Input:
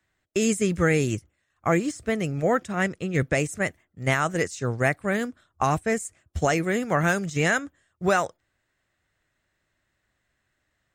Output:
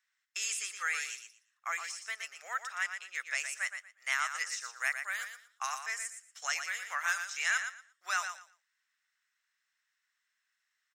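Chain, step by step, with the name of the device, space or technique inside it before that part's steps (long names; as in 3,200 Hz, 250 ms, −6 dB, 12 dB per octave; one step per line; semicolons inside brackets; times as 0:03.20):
0:04.46–0:05.75: high-shelf EQ 9,200 Hz +6 dB
headphones lying on a table (high-pass filter 1,200 Hz 24 dB per octave; parametric band 5,500 Hz +9.5 dB 0.25 octaves)
repeating echo 117 ms, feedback 20%, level −8 dB
level −5.5 dB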